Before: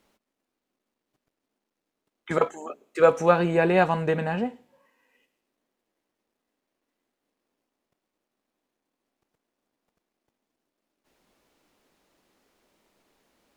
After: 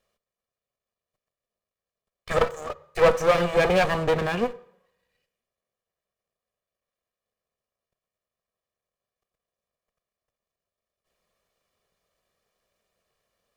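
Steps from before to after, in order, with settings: comb filter that takes the minimum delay 1.7 ms; waveshaping leveller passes 2; on a send: reverberation RT60 0.70 s, pre-delay 47 ms, DRR 19.5 dB; on the sum: trim -3 dB

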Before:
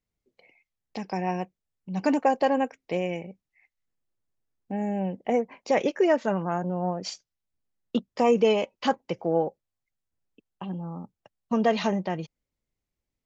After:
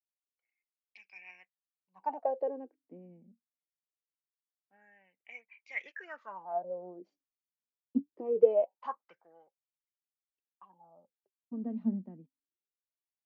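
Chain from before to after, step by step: wah-wah 0.23 Hz 230–2400 Hz, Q 13; three bands expanded up and down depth 40%; trim +1.5 dB

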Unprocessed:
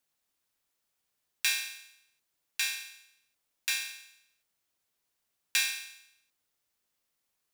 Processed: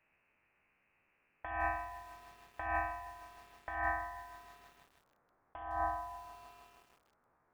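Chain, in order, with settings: spectral sustain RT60 0.57 s; high-pass sweep 850 Hz -> 2.3 kHz, 3.12–4.83 s; saturation -18.5 dBFS, distortion -14 dB; frequency inversion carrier 3.4 kHz; compressor with a negative ratio -40 dBFS, ratio -1; bit-crushed delay 157 ms, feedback 80%, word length 9-bit, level -14.5 dB; trim +2.5 dB

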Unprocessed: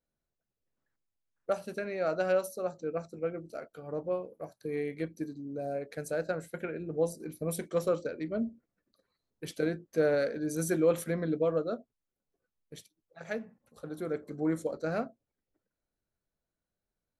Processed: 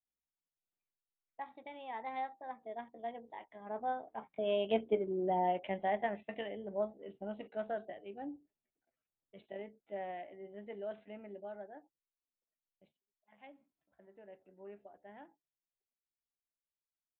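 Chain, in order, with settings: Doppler pass-by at 5.09 s, 19 m/s, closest 8 m; pitch shift +5 st; resampled via 8 kHz; trim +5.5 dB

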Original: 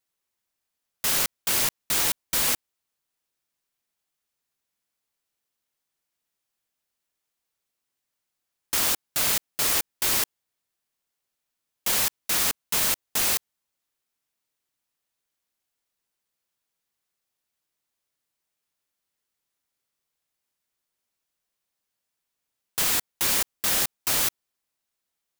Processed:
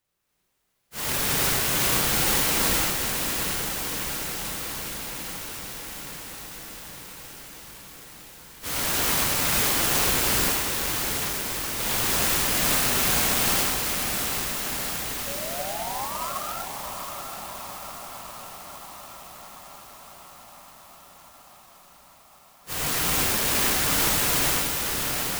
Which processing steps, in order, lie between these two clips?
phase randomisation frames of 200 ms; bass shelf 290 Hz +7.5 dB; in parallel at -2.5 dB: compressor with a negative ratio -33 dBFS, ratio -1; on the sum: painted sound rise, 15.27–16.33 s, 540–1400 Hz -34 dBFS; on a send: echo that smears into a reverb 732 ms, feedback 73%, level -5.5 dB; on the sum: gated-style reverb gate 340 ms rising, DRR -4 dB; sampling jitter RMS 0.057 ms; trim -4 dB

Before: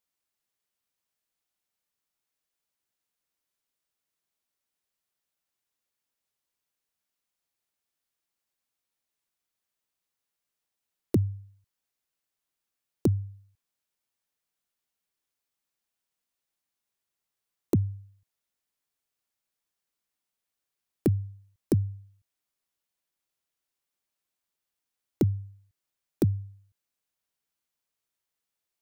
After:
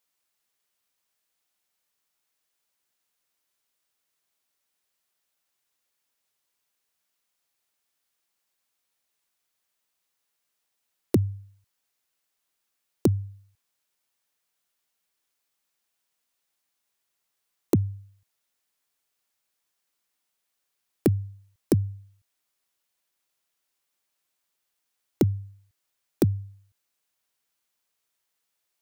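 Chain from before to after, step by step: bass shelf 350 Hz -6.5 dB; trim +7 dB

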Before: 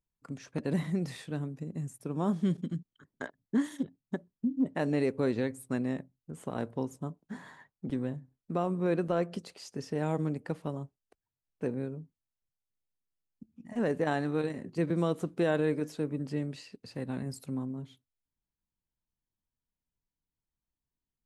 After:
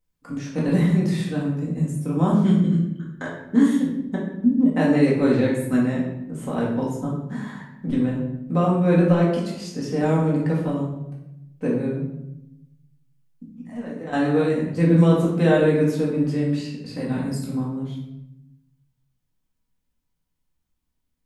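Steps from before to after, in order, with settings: 13.64–14.13 s: compression 3:1, threshold -47 dBFS, peak gain reduction 16 dB; simulated room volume 260 m³, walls mixed, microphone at 2 m; trim +4 dB

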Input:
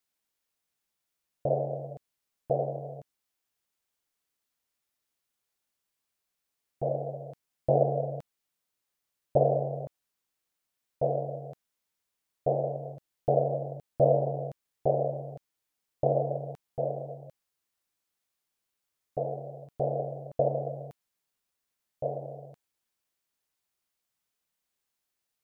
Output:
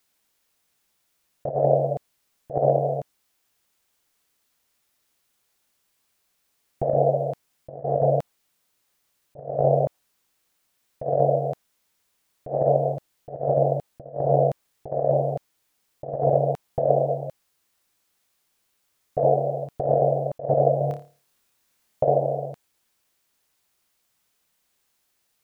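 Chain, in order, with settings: compressor with a negative ratio -32 dBFS, ratio -0.5; dynamic bell 700 Hz, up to +5 dB, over -45 dBFS, Q 0.96; 20.78–22.05 s: flutter echo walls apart 4.8 m, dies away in 0.35 s; trim +8 dB

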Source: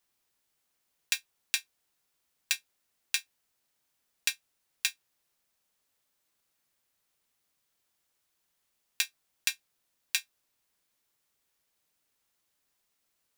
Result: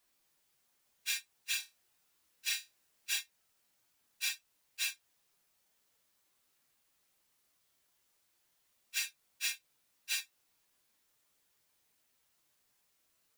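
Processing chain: phase randomisation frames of 100 ms; compression 5:1, threshold -35 dBFS, peak gain reduction 9 dB; 1.57–3.18 s: flutter echo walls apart 4.9 m, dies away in 0.22 s; trim +2.5 dB

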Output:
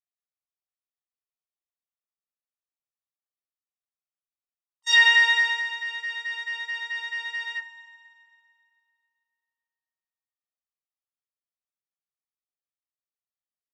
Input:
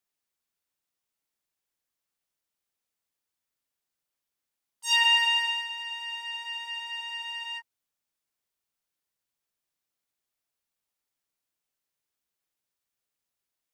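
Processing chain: low-pass 4.7 kHz 12 dB/octave; peaking EQ 980 Hz +9 dB 0.63 oct; comb 1.6 ms, depth 95%; gate -38 dBFS, range -26 dB; reverberation RT60 2.6 s, pre-delay 4 ms, DRR 9.5 dB; trim +5.5 dB

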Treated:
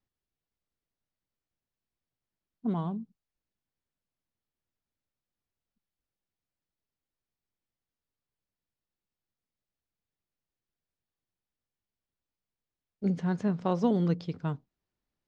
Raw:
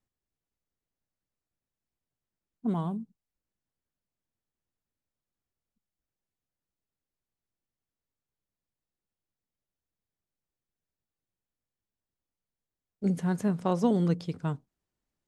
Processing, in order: low-pass 5.6 kHz 24 dB/octave; trim -1 dB

